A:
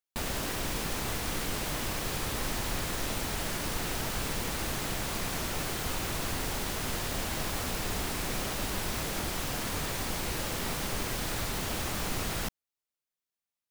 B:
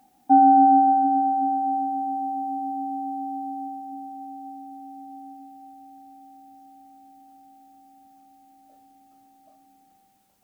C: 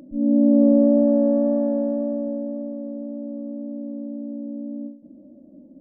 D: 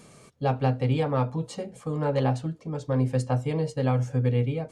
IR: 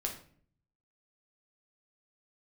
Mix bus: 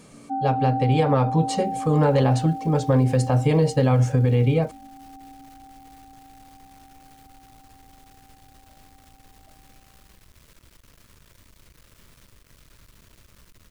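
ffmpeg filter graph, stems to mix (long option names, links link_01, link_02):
-filter_complex "[0:a]asubboost=boost=2.5:cutoff=150,alimiter=limit=-23dB:level=0:latency=1:release=109,acrusher=bits=4:mix=0:aa=0.5,adelay=1400,volume=-17.5dB[link_01];[1:a]volume=-13.5dB[link_02];[2:a]volume=-17dB[link_03];[3:a]volume=1.5dB[link_04];[link_01][link_03]amix=inputs=2:normalize=0,equalizer=frequency=780:width=6.5:gain=-13,acompressor=threshold=-48dB:ratio=6,volume=0dB[link_05];[link_02][link_04]amix=inputs=2:normalize=0,dynaudnorm=framelen=370:gausssize=5:maxgain=12dB,alimiter=limit=-10.5dB:level=0:latency=1:release=86,volume=0dB[link_06];[link_05][link_06]amix=inputs=2:normalize=0"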